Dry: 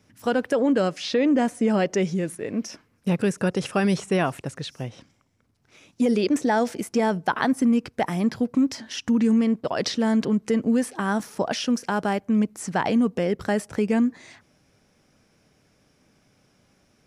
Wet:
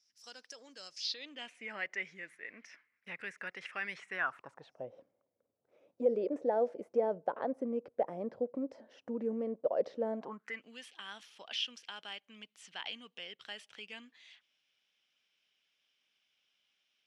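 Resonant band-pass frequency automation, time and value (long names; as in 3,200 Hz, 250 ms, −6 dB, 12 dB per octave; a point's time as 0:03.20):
resonant band-pass, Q 5
0:00.97 5,300 Hz
0:01.73 2,000 Hz
0:04.07 2,000 Hz
0:04.87 540 Hz
0:10.12 540 Hz
0:10.66 3,100 Hz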